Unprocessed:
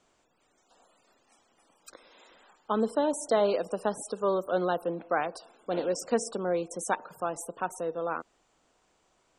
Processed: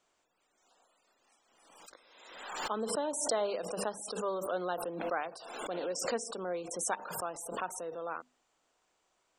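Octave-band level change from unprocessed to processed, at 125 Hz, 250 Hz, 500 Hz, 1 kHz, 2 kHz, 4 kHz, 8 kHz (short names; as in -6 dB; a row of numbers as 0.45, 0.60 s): -8.5, -9.0, -7.0, -5.0, -3.5, +1.0, +2.0 dB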